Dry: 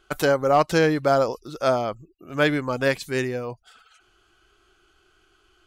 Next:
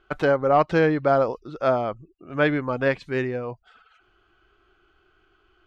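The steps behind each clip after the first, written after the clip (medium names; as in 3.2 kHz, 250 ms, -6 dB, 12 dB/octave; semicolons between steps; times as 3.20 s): low-pass 2.5 kHz 12 dB/octave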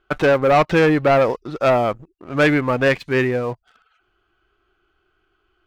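waveshaping leveller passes 2; dynamic bell 2.2 kHz, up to +4 dB, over -32 dBFS, Q 1.5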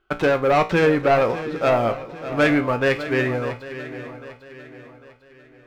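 feedback comb 58 Hz, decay 0.29 s, harmonics all, mix 70%; on a send: shuffle delay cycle 799 ms, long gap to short 3:1, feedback 38%, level -13 dB; on the sum: trim +2.5 dB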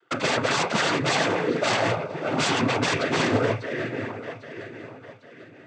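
wavefolder -21 dBFS; noise-vocoded speech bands 16; trim +4 dB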